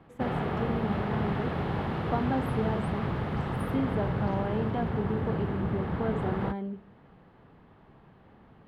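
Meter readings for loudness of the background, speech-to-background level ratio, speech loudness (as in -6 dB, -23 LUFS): -31.5 LUFS, -3.0 dB, -34.5 LUFS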